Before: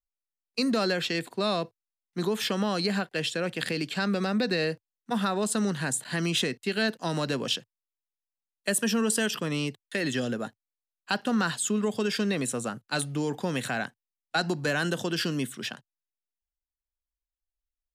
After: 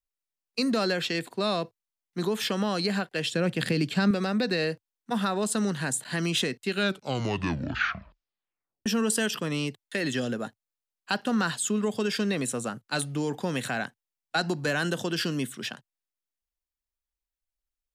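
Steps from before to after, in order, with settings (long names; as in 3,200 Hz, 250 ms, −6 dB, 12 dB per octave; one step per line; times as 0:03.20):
0:03.32–0:04.11: low-shelf EQ 240 Hz +12 dB
0:06.66: tape stop 2.20 s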